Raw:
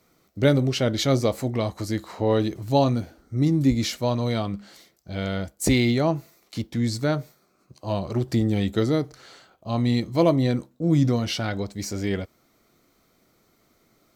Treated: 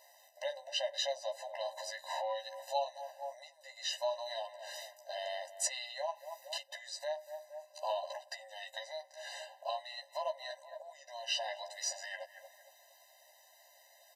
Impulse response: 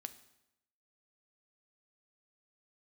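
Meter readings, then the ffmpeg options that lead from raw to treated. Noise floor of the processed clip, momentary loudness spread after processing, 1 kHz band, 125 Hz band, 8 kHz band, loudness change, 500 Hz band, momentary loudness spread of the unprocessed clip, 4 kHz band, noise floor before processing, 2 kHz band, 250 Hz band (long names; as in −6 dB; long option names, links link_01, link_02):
−64 dBFS, 12 LU, −8.5 dB, below −40 dB, −5.0 dB, −16.0 dB, −14.0 dB, 11 LU, −7.0 dB, −65 dBFS, −10.5 dB, below −40 dB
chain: -filter_complex "[0:a]asplit=2[link_01][link_02];[link_02]adelay=231,lowpass=frequency=1200:poles=1,volume=-18dB,asplit=2[link_03][link_04];[link_04]adelay=231,lowpass=frequency=1200:poles=1,volume=0.47,asplit=2[link_05][link_06];[link_06]adelay=231,lowpass=frequency=1200:poles=1,volume=0.47,asplit=2[link_07][link_08];[link_08]adelay=231,lowpass=frequency=1200:poles=1,volume=0.47[link_09];[link_03][link_05][link_07][link_09]amix=inputs=4:normalize=0[link_10];[link_01][link_10]amix=inputs=2:normalize=0,aresample=32000,aresample=44100,acrossover=split=7300[link_11][link_12];[link_12]acompressor=threshold=-59dB:ratio=4:attack=1:release=60[link_13];[link_11][link_13]amix=inputs=2:normalize=0,asplit=2[link_14][link_15];[link_15]adelay=13,volume=-5dB[link_16];[link_14][link_16]amix=inputs=2:normalize=0,acompressor=threshold=-33dB:ratio=12,asubboost=boost=5:cutoff=190,afftfilt=real='re*eq(mod(floor(b*sr/1024/520),2),1)':imag='im*eq(mod(floor(b*sr/1024/520),2),1)':win_size=1024:overlap=0.75,volume=7dB"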